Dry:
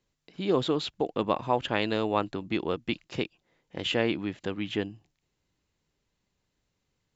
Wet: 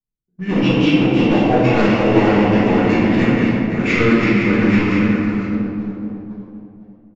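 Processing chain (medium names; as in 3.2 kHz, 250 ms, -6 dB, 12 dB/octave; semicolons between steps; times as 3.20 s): backward echo that repeats 254 ms, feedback 70%, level -4.5 dB; level-controlled noise filter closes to 360 Hz, open at -25 dBFS; level rider gain up to 7 dB; waveshaping leveller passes 3; formant shift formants -5 st; reverberation RT60 1.9 s, pre-delay 5 ms, DRR -11 dB; resampled via 16 kHz; trim -14 dB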